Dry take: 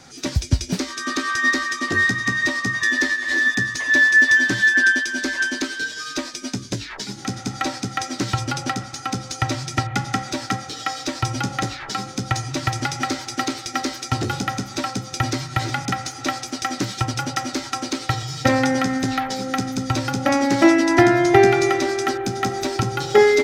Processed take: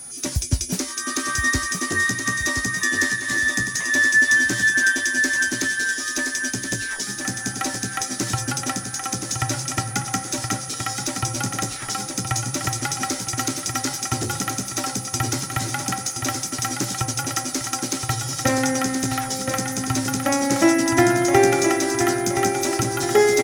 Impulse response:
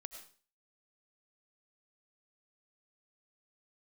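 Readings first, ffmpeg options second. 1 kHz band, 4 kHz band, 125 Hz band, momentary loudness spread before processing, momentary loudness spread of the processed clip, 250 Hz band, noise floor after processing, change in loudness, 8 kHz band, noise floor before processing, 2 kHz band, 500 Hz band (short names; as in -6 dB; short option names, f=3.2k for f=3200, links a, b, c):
-2.0 dB, -0.5 dB, -2.0 dB, 13 LU, 8 LU, -2.0 dB, -33 dBFS, -1.0 dB, +7.5 dB, -37 dBFS, -2.0 dB, -2.5 dB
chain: -af "aexciter=amount=4.6:drive=3.2:freq=5.9k,aeval=exprs='val(0)+0.0251*sin(2*PI*9900*n/s)':c=same,aecho=1:1:1022|2044|3066|4088|5110|6132:0.473|0.227|0.109|0.0523|0.0251|0.0121,volume=-3dB"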